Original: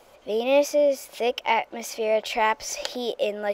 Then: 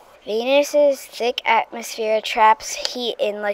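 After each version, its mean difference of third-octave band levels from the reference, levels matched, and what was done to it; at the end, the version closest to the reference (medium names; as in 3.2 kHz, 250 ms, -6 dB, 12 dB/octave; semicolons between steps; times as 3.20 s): 1.5 dB: sweeping bell 1.2 Hz 910–5600 Hz +9 dB; trim +3 dB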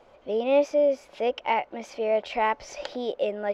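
3.5 dB: tape spacing loss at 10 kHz 22 dB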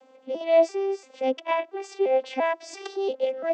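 8.5 dB: vocoder on a broken chord major triad, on C4, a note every 342 ms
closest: first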